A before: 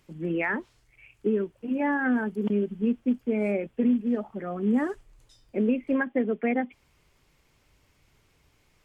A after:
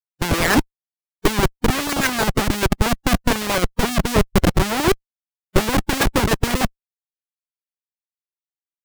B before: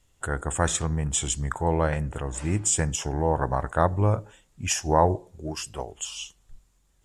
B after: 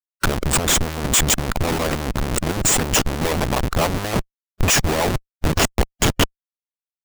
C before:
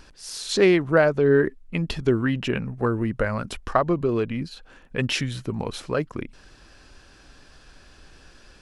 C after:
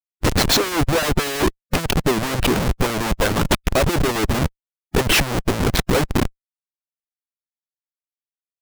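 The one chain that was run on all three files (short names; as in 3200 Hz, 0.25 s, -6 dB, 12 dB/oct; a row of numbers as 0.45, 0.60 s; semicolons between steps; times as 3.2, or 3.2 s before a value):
rotary speaker horn 6.7 Hz; Schmitt trigger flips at -31.5 dBFS; harmonic-percussive split harmonic -17 dB; match loudness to -20 LUFS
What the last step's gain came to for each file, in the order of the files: +19.5, +15.0, +14.0 dB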